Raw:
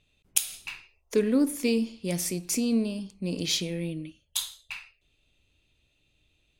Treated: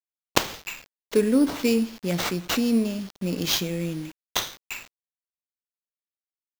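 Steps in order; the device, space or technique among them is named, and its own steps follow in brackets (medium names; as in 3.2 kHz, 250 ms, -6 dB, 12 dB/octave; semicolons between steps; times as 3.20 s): early 8-bit sampler (sample-rate reducer 9.8 kHz, jitter 0%; bit crusher 8-bit); trim +3.5 dB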